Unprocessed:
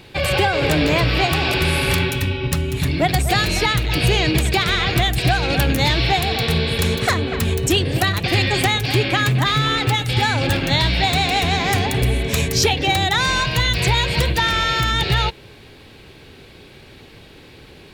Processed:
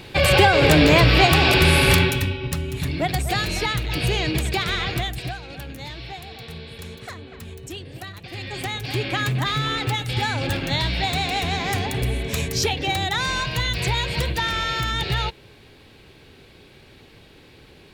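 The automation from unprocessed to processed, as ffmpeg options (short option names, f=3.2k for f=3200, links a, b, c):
-af "volume=15.5dB,afade=t=out:st=1.91:d=0.47:silence=0.375837,afade=t=out:st=4.81:d=0.62:silence=0.237137,afade=t=in:st=8.32:d=0.9:silence=0.237137"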